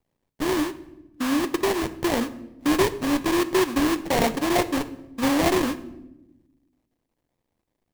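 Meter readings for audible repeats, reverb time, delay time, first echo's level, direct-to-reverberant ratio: no echo, 0.95 s, no echo, no echo, 11.5 dB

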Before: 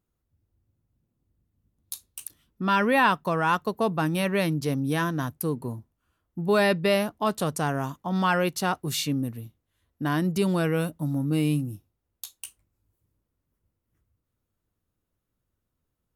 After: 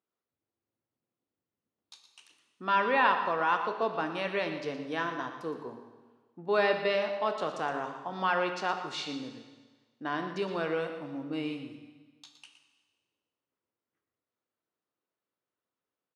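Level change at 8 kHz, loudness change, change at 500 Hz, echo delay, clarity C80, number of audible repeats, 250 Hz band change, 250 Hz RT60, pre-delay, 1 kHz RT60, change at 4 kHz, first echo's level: -17.0 dB, -5.5 dB, -4.0 dB, 117 ms, 7.5 dB, 1, -11.5 dB, 1.4 s, 21 ms, 1.4 s, -5.5 dB, -12.0 dB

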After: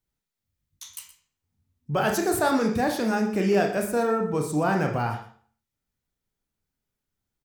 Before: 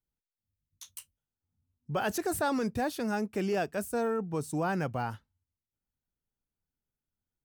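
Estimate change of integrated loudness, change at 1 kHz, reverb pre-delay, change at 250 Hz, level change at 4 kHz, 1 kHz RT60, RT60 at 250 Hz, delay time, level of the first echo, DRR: +7.5 dB, +7.0 dB, 27 ms, +7.5 dB, +7.0 dB, 0.50 s, 0.50 s, 120 ms, -14.0 dB, 1.5 dB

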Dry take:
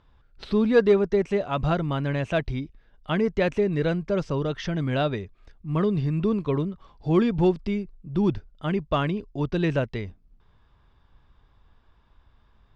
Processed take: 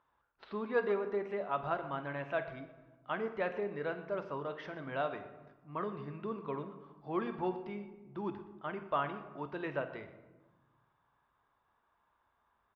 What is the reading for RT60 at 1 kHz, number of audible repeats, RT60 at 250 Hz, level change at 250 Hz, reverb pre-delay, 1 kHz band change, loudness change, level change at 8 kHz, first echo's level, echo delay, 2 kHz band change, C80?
1.2 s, 2, 1.8 s, -17.5 dB, 3 ms, -5.5 dB, -13.0 dB, no reading, -16.0 dB, 49 ms, -8.0 dB, 12.0 dB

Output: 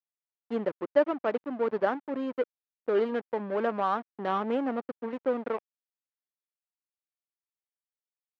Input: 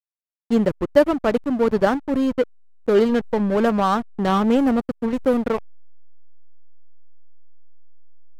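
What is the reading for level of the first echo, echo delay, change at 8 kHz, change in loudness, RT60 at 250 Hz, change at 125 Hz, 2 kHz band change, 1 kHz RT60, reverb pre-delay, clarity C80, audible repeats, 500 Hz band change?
no echo, no echo, no reading, -10.0 dB, no reverb, under -15 dB, -8.5 dB, no reverb, no reverb, no reverb, no echo, -8.5 dB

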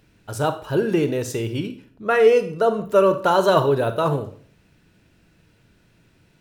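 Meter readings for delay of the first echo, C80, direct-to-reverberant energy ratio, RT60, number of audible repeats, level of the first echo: no echo, 16.5 dB, 9.0 dB, 0.50 s, no echo, no echo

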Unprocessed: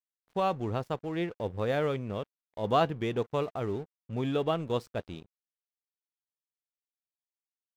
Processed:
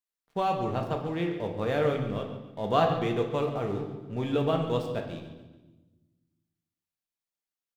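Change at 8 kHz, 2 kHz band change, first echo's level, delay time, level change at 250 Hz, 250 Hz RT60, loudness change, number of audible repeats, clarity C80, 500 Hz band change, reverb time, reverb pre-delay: no reading, +2.0 dB, -13.5 dB, 141 ms, +3.0 dB, 1.8 s, +2.5 dB, 3, 8.0 dB, +2.5 dB, 1.2 s, 4 ms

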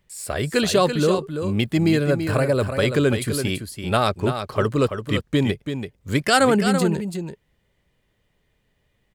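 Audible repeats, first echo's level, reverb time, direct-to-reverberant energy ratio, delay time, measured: 1, -8.0 dB, no reverb, no reverb, 334 ms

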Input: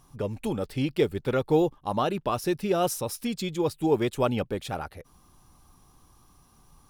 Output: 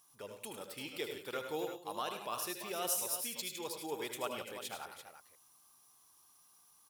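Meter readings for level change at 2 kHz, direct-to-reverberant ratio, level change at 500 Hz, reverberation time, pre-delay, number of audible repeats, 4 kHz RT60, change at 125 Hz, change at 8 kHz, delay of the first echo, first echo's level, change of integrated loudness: -7.0 dB, no reverb, -15.5 dB, no reverb, no reverb, 4, no reverb, -26.0 dB, 0.0 dB, 77 ms, -8.5 dB, -12.0 dB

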